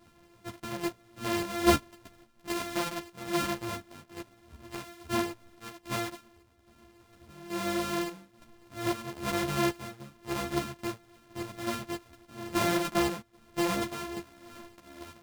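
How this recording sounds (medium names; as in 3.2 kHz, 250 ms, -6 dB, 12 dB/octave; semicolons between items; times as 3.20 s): a buzz of ramps at a fixed pitch in blocks of 128 samples; chopped level 1.2 Hz, depth 60%, duty 70%; a shimmering, thickened sound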